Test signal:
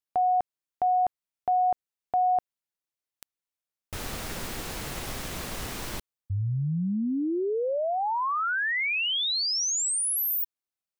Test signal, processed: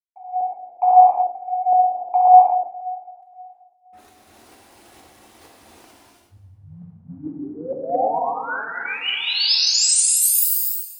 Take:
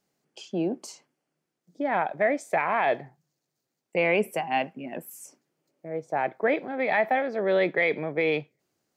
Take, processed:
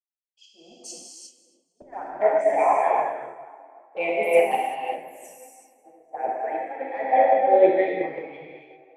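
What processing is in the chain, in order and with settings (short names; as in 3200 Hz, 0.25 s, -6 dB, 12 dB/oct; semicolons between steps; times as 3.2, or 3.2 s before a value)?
formant sharpening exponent 1.5; tremolo saw up 2.2 Hz, depth 90%; HPF 230 Hz 12 dB/oct; on a send: split-band echo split 1300 Hz, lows 0.53 s, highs 0.271 s, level -12 dB; on the sum: AGC gain up to 6 dB; bell 9700 Hz +5.5 dB 0.26 oct; envelope flanger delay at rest 5.4 ms, full sweep at -19 dBFS; bell 780 Hz +6.5 dB 0.61 oct; non-linear reverb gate 0.42 s flat, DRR -5 dB; three-band expander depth 100%; gain -4.5 dB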